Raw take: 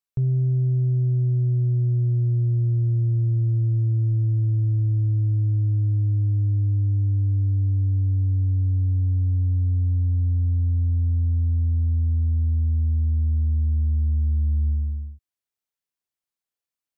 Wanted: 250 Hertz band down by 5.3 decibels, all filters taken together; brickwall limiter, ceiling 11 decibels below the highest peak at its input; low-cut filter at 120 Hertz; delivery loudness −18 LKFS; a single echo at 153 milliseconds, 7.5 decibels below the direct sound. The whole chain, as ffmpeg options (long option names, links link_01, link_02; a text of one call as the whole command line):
ffmpeg -i in.wav -af "highpass=120,equalizer=frequency=250:width_type=o:gain=-8.5,alimiter=level_in=8dB:limit=-24dB:level=0:latency=1,volume=-8dB,aecho=1:1:153:0.422,volume=19dB" out.wav